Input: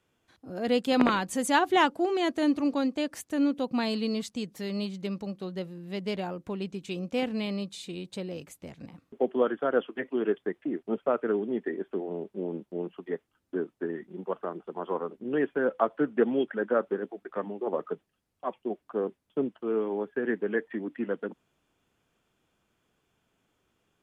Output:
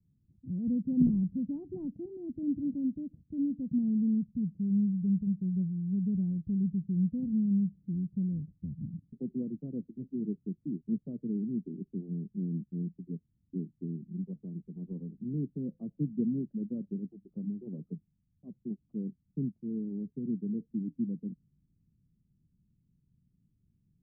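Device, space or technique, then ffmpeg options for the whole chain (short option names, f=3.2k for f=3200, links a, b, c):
the neighbour's flat through the wall: -af "lowpass=f=190:w=0.5412,lowpass=f=190:w=1.3066,equalizer=f=160:t=o:w=0.77:g=4,volume=8dB"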